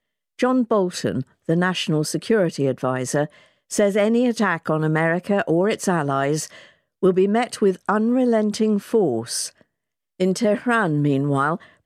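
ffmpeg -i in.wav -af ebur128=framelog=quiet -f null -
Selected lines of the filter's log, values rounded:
Integrated loudness:
  I:         -20.9 LUFS
  Threshold: -31.3 LUFS
Loudness range:
  LRA:         1.3 LU
  Threshold: -41.2 LUFS
  LRA low:   -22.0 LUFS
  LRA high:  -20.6 LUFS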